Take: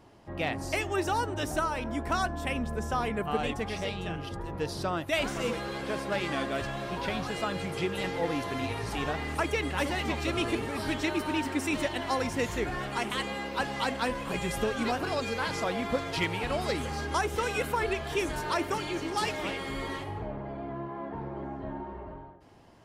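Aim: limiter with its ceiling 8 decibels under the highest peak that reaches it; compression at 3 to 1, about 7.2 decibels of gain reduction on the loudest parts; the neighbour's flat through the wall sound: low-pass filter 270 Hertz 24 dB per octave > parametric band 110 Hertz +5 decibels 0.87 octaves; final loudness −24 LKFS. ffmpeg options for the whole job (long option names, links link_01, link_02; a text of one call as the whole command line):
ffmpeg -i in.wav -af "acompressor=threshold=-34dB:ratio=3,alimiter=level_in=6.5dB:limit=-24dB:level=0:latency=1,volume=-6.5dB,lowpass=frequency=270:width=0.5412,lowpass=frequency=270:width=1.3066,equalizer=frequency=110:width_type=o:width=0.87:gain=5,volume=20.5dB" out.wav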